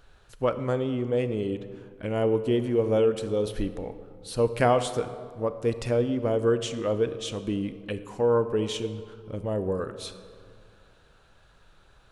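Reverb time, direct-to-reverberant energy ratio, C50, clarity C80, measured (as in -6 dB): 2.3 s, 11.0 dB, 12.0 dB, 13.0 dB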